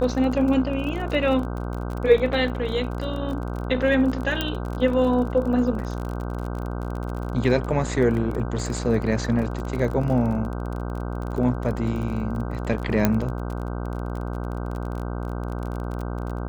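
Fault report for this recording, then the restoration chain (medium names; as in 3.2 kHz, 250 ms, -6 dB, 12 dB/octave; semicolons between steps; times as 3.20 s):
buzz 60 Hz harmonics 26 -29 dBFS
crackle 33 per s -30 dBFS
4.41 s: pop -9 dBFS
13.05 s: pop -5 dBFS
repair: de-click; de-hum 60 Hz, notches 26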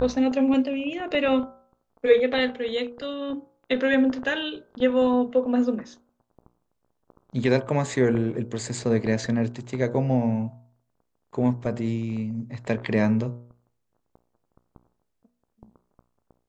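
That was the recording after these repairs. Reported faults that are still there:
13.05 s: pop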